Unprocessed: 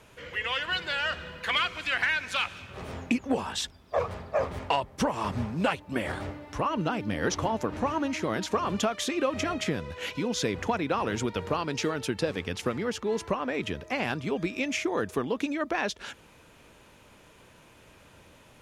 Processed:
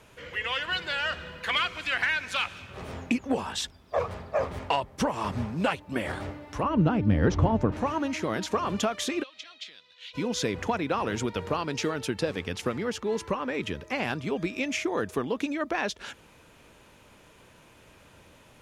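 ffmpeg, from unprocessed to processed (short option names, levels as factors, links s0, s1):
-filter_complex "[0:a]asettb=1/sr,asplit=3[s0][s1][s2];[s0]atrim=end=6.634[s3];[s1]atrim=start=6.63:end=7.72,asetpts=PTS-STARTPTS,afade=t=in:d=0.004:c=qsin,afade=t=out:st=1.086:d=0.004:c=qsin,aemphasis=mode=reproduction:type=riaa[s4];[s2]atrim=start=7.716[s5];[s3][s4]acrossfade=d=0.004:c1=hsin:c2=qsin[s6];[s6][s5]acrossfade=d=0.004:c1=qsin:c2=hsin,asplit=3[s7][s8][s9];[s7]afade=t=out:st=9.22:d=0.02[s10];[s8]bandpass=f=3800:t=q:w=3.8,afade=t=in:st=9.22:d=0.02,afade=t=out:st=10.13:d=0.02[s11];[s9]afade=t=in:st=10.13:d=0.02[s12];[s10][s11][s12]amix=inputs=3:normalize=0,asettb=1/sr,asplit=3[s13][s14][s15];[s13]atrim=end=13.154[s16];[s14]atrim=start=13.15:end=13.95,asetpts=PTS-STARTPTS,afade=t=in:d=0.004:c=qsin,afade=t=out:st=0.796:d=0.004:c=qsin,asuperstop=centerf=680:order=4:qfactor=5.6[s17];[s15]atrim=start=13.946[s18];[s16][s17]acrossfade=d=0.004:c1=hsin:c2=qsin[s19];[s19][s18]acrossfade=d=0.004:c1=qsin:c2=hsin"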